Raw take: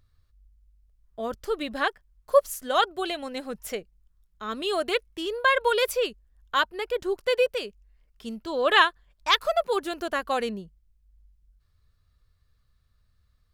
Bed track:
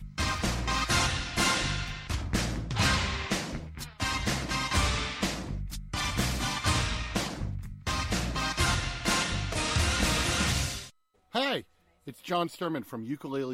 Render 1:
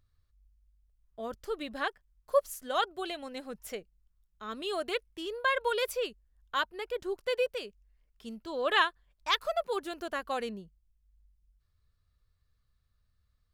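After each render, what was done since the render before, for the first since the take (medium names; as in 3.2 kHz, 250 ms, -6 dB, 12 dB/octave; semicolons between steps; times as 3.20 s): trim -7 dB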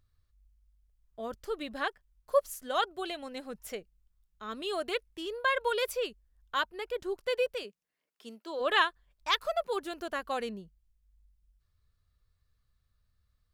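7.63–8.59 s: high-pass 150 Hz -> 330 Hz 24 dB/octave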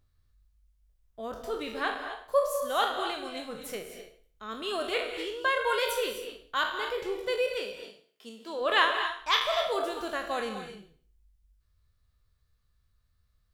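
spectral sustain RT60 0.46 s; gated-style reverb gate 280 ms rising, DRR 6.5 dB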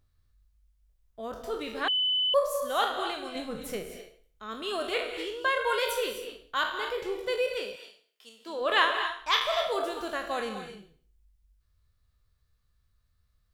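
1.88–2.34 s: bleep 3.01 kHz -23.5 dBFS; 3.35–3.97 s: bass shelf 290 Hz +9 dB; 7.76–8.46 s: high-pass 1.2 kHz 6 dB/octave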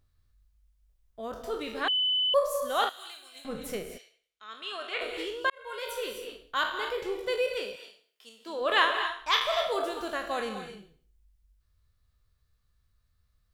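2.89–3.45 s: pre-emphasis filter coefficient 0.97; 3.97–5.00 s: band-pass filter 4.9 kHz -> 1.7 kHz, Q 0.76; 5.50–6.35 s: fade in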